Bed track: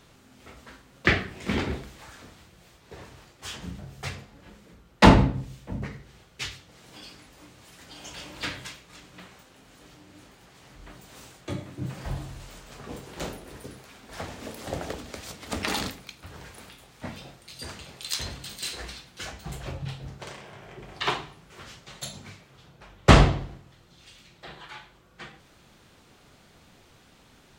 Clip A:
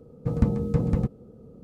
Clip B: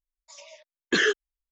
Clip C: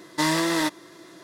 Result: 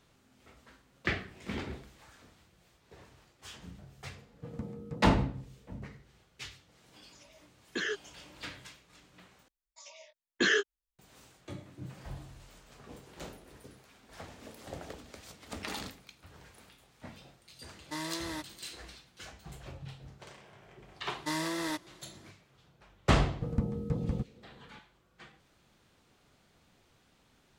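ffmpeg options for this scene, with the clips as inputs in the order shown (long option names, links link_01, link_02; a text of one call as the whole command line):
ffmpeg -i bed.wav -i cue0.wav -i cue1.wav -i cue2.wav -filter_complex "[1:a]asplit=2[link_01][link_02];[2:a]asplit=2[link_03][link_04];[3:a]asplit=2[link_05][link_06];[0:a]volume=-10.5dB[link_07];[link_01]highpass=frequency=170:poles=1[link_08];[link_04]asplit=2[link_09][link_10];[link_10]adelay=20,volume=-7dB[link_11];[link_09][link_11]amix=inputs=2:normalize=0[link_12];[link_07]asplit=2[link_13][link_14];[link_13]atrim=end=9.484[link_15];[link_12]atrim=end=1.51,asetpts=PTS-STARTPTS,volume=-5dB[link_16];[link_14]atrim=start=10.986[link_17];[link_08]atrim=end=1.63,asetpts=PTS-STARTPTS,volume=-14.5dB,afade=type=in:duration=0.004:curve=hsin,afade=type=out:start_time=1.626:duration=0.004:curve=hsin,adelay=183897S[link_18];[link_03]atrim=end=1.51,asetpts=PTS-STARTPTS,volume=-12dB,afade=type=in:duration=0.004:curve=hsin,afade=type=out:start_time=1.506:duration=0.004:curve=hsin,adelay=6830[link_19];[link_05]atrim=end=1.23,asetpts=PTS-STARTPTS,volume=-15.5dB,afade=type=in:duration=0.004:curve=hsin,afade=type=out:start_time=1.226:duration=0.004:curve=hsin,adelay=17730[link_20];[link_06]atrim=end=1.23,asetpts=PTS-STARTPTS,volume=-11dB,afade=type=in:duration=0.004:curve=hsin,afade=type=out:start_time=1.226:duration=0.004:curve=hsin,adelay=21080[link_21];[link_02]atrim=end=1.63,asetpts=PTS-STARTPTS,volume=-9dB,afade=type=in:duration=0.004:curve=hsin,afade=type=out:start_time=1.626:duration=0.004:curve=hsin,adelay=23160[link_22];[link_15][link_16]acrossfade=duration=0.004:curve1=hsin:curve2=hsin[link_23];[link_23][link_17]acrossfade=duration=0.004:curve1=hsin:curve2=hsin[link_24];[link_24][link_18][link_19][link_20][link_21][link_22]amix=inputs=6:normalize=0" out.wav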